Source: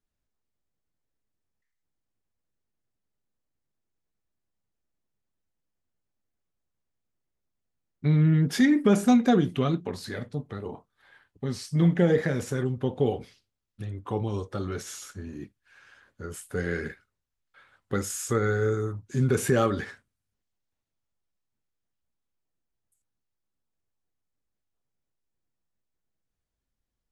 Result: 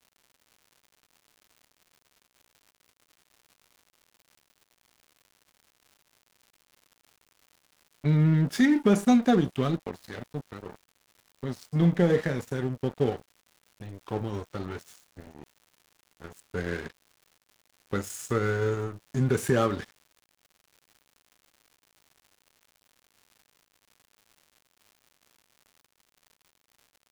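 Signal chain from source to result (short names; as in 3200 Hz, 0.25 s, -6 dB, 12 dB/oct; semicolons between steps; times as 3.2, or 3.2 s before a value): crossover distortion -37 dBFS; crackle 180/s -46 dBFS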